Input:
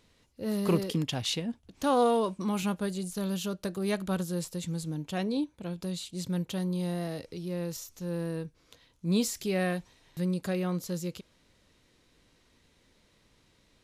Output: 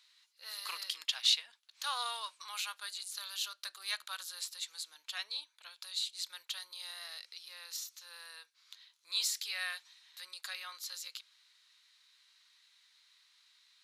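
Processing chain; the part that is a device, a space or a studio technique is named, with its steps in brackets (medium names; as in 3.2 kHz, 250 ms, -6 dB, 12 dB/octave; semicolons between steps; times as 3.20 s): headphones lying on a table (high-pass 1.2 kHz 24 dB/octave; peaking EQ 4.1 kHz +9 dB 0.55 oct); trim -1.5 dB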